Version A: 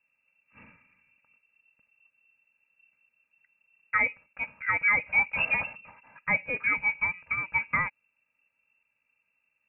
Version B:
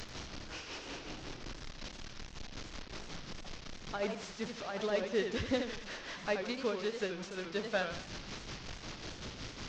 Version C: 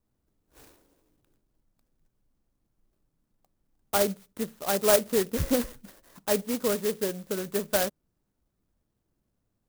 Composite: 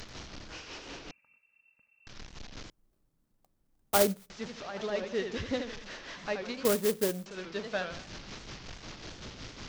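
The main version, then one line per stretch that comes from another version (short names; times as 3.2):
B
1.11–2.07 from A
2.7–4.3 from C
6.65–7.26 from C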